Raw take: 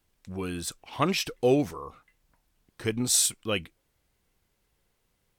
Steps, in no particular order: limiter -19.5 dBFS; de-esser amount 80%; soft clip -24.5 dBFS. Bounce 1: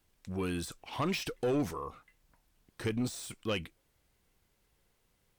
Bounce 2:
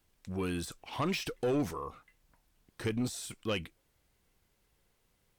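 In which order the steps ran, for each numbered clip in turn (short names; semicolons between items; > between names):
limiter > soft clip > de-esser; limiter > de-esser > soft clip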